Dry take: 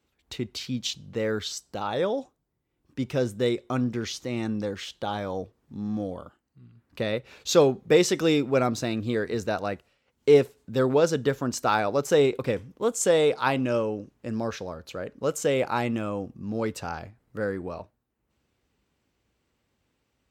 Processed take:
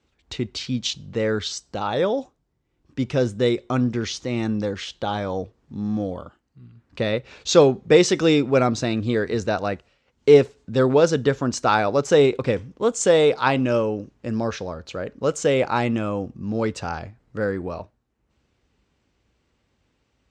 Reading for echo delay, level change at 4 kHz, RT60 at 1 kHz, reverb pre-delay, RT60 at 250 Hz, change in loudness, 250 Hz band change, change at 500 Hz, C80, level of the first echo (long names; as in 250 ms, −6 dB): no echo audible, +4.5 dB, no reverb audible, no reverb audible, no reverb audible, +4.5 dB, +5.0 dB, +4.5 dB, no reverb audible, no echo audible